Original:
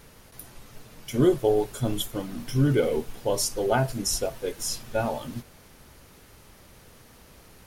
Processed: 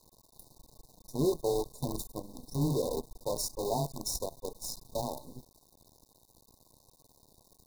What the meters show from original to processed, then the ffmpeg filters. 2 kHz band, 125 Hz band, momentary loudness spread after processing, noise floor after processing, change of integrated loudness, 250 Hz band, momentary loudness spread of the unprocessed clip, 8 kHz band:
under -40 dB, -9.0 dB, 12 LU, -68 dBFS, -8.5 dB, -9.0 dB, 17 LU, -8.0 dB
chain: -af "afreqshift=13,acrusher=bits=5:dc=4:mix=0:aa=0.000001,afftfilt=real='re*(1-between(b*sr/4096,1100,3600))':imag='im*(1-between(b*sr/4096,1100,3600))':win_size=4096:overlap=0.75,volume=0.376"

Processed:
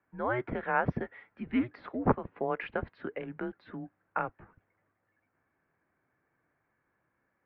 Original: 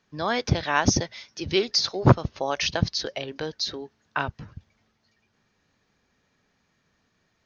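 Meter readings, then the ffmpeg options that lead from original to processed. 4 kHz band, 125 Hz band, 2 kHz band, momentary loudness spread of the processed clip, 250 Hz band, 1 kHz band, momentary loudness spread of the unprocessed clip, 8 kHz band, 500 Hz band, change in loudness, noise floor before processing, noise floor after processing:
-30.5 dB, -14.0 dB, -7.0 dB, 12 LU, -5.5 dB, -5.5 dB, 13 LU, no reading, -7.0 dB, -8.5 dB, -71 dBFS, -79 dBFS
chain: -filter_complex "[0:a]asplit=2[s0][s1];[s1]asoftclip=type=tanh:threshold=0.211,volume=0.376[s2];[s0][s2]amix=inputs=2:normalize=0,highpass=f=250:t=q:w=0.5412,highpass=f=250:t=q:w=1.307,lowpass=f=2200:t=q:w=0.5176,lowpass=f=2200:t=q:w=0.7071,lowpass=f=2200:t=q:w=1.932,afreqshift=-120,volume=0.447"

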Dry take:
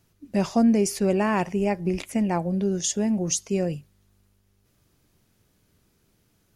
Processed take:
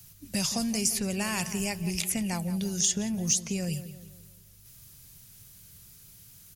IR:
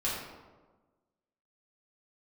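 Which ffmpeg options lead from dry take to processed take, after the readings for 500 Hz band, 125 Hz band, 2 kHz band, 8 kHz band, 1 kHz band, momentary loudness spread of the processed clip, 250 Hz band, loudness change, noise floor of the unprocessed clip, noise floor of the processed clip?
-12.5 dB, -4.0 dB, -1.5 dB, +3.0 dB, -10.5 dB, 9 LU, -7.5 dB, -4.5 dB, -67 dBFS, -54 dBFS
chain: -filter_complex "[0:a]crystalizer=i=9.5:c=0,lowshelf=f=200:t=q:w=1.5:g=10,acrossover=split=140|3200[s0][s1][s2];[s0]acompressor=threshold=0.01:ratio=4[s3];[s1]acompressor=threshold=0.0316:ratio=4[s4];[s2]acompressor=threshold=0.0501:ratio=4[s5];[s3][s4][s5]amix=inputs=3:normalize=0,asplit=2[s6][s7];[s7]asoftclip=type=tanh:threshold=0.168,volume=0.562[s8];[s6][s8]amix=inputs=2:normalize=0,asplit=2[s9][s10];[s10]adelay=173,lowpass=f=2500:p=1,volume=0.251,asplit=2[s11][s12];[s12]adelay=173,lowpass=f=2500:p=1,volume=0.47,asplit=2[s13][s14];[s14]adelay=173,lowpass=f=2500:p=1,volume=0.47,asplit=2[s15][s16];[s16]adelay=173,lowpass=f=2500:p=1,volume=0.47,asplit=2[s17][s18];[s18]adelay=173,lowpass=f=2500:p=1,volume=0.47[s19];[s9][s11][s13][s15][s17][s19]amix=inputs=6:normalize=0,volume=0.501"

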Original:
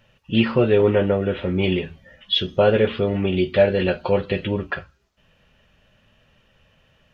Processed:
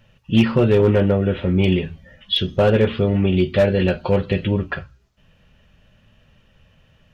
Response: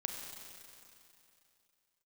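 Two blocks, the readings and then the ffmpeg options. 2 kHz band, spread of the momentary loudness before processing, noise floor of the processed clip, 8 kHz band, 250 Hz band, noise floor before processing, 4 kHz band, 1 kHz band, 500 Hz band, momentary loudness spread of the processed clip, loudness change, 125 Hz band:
0.0 dB, 9 LU, -57 dBFS, no reading, +3.5 dB, -61 dBFS, 0.0 dB, 0.0 dB, 0.0 dB, 7 LU, +2.0 dB, +6.0 dB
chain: -af "asoftclip=type=hard:threshold=0.299,bass=f=250:g=7,treble=f=4000:g=1,bandreject=f=62.75:t=h:w=4,bandreject=f=125.5:t=h:w=4"

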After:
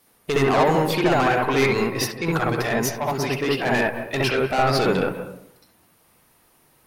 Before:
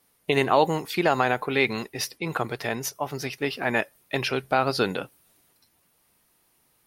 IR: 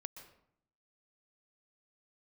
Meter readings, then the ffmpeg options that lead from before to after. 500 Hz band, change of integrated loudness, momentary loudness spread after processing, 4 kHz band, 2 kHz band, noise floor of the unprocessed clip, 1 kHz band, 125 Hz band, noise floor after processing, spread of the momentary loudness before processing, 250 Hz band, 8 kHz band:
+5.0 dB, +4.5 dB, 6 LU, +3.0 dB, +3.5 dB, -67 dBFS, +3.5 dB, +7.5 dB, -60 dBFS, 9 LU, +6.0 dB, +4.0 dB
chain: -filter_complex "[0:a]asoftclip=type=tanh:threshold=0.0631,asplit=2[s0][s1];[1:a]atrim=start_sample=2205,lowpass=2000,adelay=66[s2];[s1][s2]afir=irnorm=-1:irlink=0,volume=2.37[s3];[s0][s3]amix=inputs=2:normalize=0,volume=1.88"

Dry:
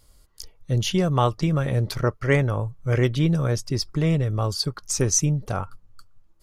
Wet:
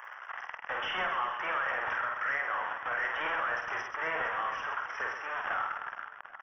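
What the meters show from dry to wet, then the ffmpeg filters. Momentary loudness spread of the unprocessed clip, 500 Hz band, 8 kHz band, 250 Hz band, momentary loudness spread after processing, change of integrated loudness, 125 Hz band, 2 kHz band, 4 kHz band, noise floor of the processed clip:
6 LU, -14.5 dB, under -30 dB, -29.0 dB, 10 LU, -9.5 dB, -39.5 dB, +3.5 dB, -11.5 dB, -48 dBFS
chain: -af "aeval=exprs='val(0)+0.5*0.0596*sgn(val(0))':c=same,highpass=f=850:w=0.5412,highpass=f=850:w=1.3066,highshelf=f=2100:t=q:w=3:g=-6,acompressor=threshold=0.0158:ratio=3,alimiter=level_in=2.37:limit=0.0631:level=0:latency=1:release=258,volume=0.422,dynaudnorm=f=170:g=5:m=5.01,aresample=11025,asoftclip=type=tanh:threshold=0.0376,aresample=44100,asuperstop=centerf=4300:order=8:qfactor=1.5,aecho=1:1:50|130|258|462.8|790.5:0.631|0.398|0.251|0.158|0.1"

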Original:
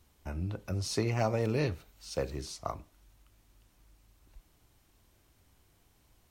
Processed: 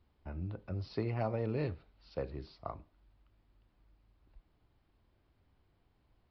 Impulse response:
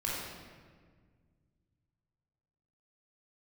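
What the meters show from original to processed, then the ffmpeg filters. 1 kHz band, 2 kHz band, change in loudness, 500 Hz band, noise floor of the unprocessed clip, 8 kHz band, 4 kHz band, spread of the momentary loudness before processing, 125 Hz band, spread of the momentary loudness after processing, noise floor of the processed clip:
-5.5 dB, -8.5 dB, -5.0 dB, -5.0 dB, -68 dBFS, under -30 dB, -14.0 dB, 11 LU, -4.5 dB, 12 LU, -74 dBFS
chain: -af "highshelf=f=2500:g=-10.5,aresample=11025,aresample=44100,volume=0.596"

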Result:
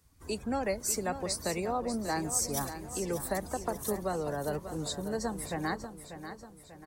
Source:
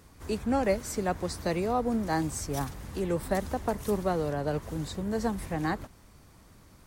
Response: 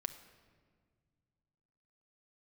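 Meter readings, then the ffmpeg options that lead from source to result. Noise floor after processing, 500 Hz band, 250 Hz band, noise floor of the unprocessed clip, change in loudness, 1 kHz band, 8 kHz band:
-54 dBFS, -3.5 dB, -5.0 dB, -56 dBFS, -2.5 dB, -3.0 dB, +7.0 dB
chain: -filter_complex "[0:a]acrossover=split=170[s0][s1];[s1]acompressor=threshold=0.0316:ratio=2[s2];[s0][s2]amix=inputs=2:normalize=0,highshelf=f=4000:g=10,afftdn=nr=16:nf=-44,lowshelf=f=260:g=-7.5,asplit=2[s3][s4];[s4]aecho=0:1:591|1182|1773|2364|2955:0.299|0.143|0.0688|0.033|0.0158[s5];[s3][s5]amix=inputs=2:normalize=0"

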